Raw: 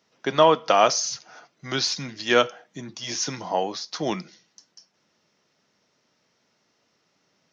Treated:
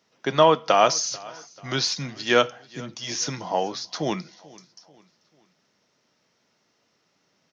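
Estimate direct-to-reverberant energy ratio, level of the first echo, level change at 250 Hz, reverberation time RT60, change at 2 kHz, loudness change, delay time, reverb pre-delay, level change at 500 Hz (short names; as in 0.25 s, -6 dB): none, -22.5 dB, +0.5 dB, none, 0.0 dB, 0.0 dB, 0.439 s, none, 0.0 dB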